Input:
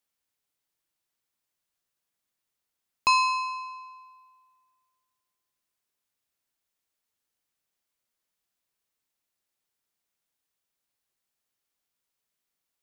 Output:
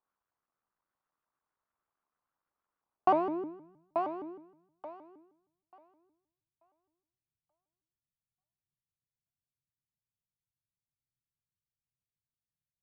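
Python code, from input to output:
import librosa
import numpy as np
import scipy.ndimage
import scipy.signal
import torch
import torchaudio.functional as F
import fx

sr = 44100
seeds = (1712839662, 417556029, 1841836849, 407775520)

p1 = fx.cycle_switch(x, sr, every=3, mode='muted')
p2 = fx.filter_sweep_lowpass(p1, sr, from_hz=1200.0, to_hz=130.0, start_s=2.77, end_s=3.9, q=2.9)
p3 = p2 + fx.echo_thinned(p2, sr, ms=885, feedback_pct=21, hz=210.0, wet_db=-6.0, dry=0)
y = fx.vibrato_shape(p3, sr, shape='saw_up', rate_hz=6.4, depth_cents=250.0)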